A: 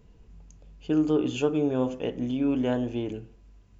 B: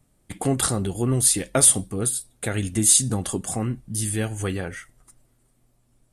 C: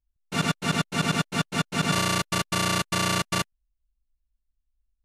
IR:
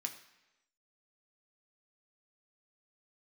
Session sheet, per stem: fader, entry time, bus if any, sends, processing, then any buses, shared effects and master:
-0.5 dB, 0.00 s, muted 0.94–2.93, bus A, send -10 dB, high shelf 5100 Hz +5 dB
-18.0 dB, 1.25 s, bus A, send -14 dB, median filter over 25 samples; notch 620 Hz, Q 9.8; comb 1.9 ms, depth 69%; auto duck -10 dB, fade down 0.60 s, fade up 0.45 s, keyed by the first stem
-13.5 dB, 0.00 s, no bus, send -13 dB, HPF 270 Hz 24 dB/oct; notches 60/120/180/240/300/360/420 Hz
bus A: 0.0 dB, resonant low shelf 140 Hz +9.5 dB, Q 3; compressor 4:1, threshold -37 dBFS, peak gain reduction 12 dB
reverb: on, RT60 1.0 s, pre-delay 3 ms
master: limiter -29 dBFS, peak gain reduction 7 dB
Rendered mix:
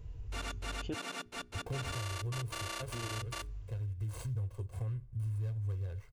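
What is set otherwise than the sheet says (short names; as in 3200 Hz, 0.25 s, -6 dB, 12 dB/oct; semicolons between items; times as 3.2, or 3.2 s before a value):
stem A: missing high shelf 5100 Hz +5 dB; stem B -18.0 dB -> -9.5 dB; reverb return -8.5 dB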